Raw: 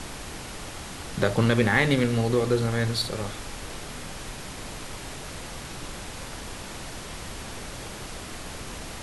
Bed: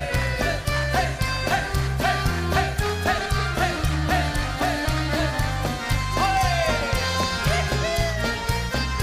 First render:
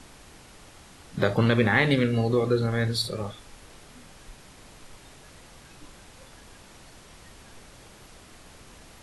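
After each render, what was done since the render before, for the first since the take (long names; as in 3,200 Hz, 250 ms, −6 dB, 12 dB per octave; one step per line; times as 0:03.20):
noise reduction from a noise print 12 dB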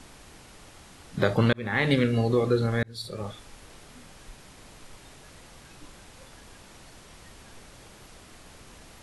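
0:01.53–0:01.93: fade in
0:02.83–0:03.34: fade in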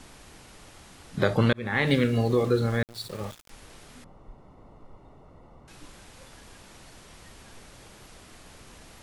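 0:01.86–0:03.50: centre clipping without the shift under −40 dBFS
0:04.04–0:05.68: Savitzky-Golay smoothing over 65 samples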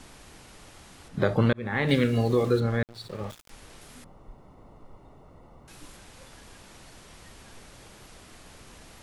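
0:01.08–0:01.89: high-shelf EQ 2,300 Hz −8 dB
0:02.60–0:03.30: low-pass filter 2,700 Hz 6 dB per octave
0:03.81–0:05.97: high-shelf EQ 11,000 Hz +10 dB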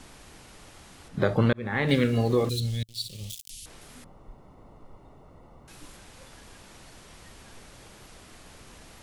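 0:02.49–0:03.66: drawn EQ curve 110 Hz 0 dB, 1,400 Hz −29 dB, 3,000 Hz +8 dB, 10,000 Hz +14 dB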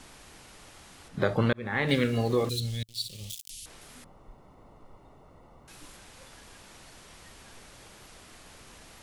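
low-shelf EQ 500 Hz −4 dB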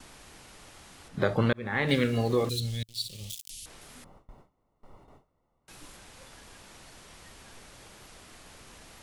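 noise gate with hold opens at −43 dBFS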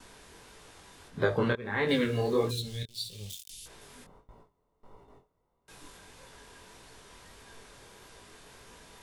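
chorus effect 1.6 Hz, delay 17.5 ms, depth 6.6 ms
hollow resonant body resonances 430/980/1,600/3,600 Hz, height 8 dB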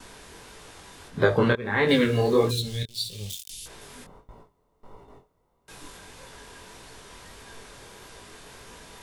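level +6.5 dB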